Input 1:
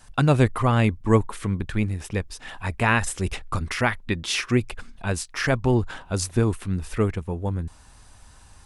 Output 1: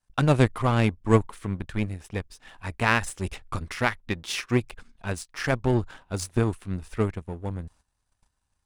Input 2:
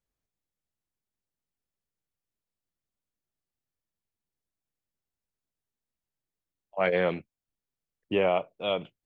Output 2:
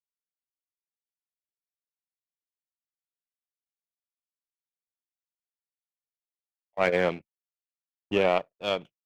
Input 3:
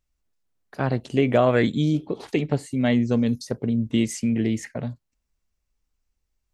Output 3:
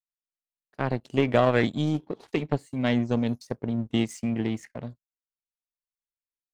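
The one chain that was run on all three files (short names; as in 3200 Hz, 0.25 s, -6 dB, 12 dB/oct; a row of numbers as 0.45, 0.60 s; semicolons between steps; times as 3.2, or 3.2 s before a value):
gate -45 dBFS, range -9 dB; power-law curve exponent 1.4; match loudness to -27 LUFS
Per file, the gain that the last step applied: +1.0, +4.0, 0.0 dB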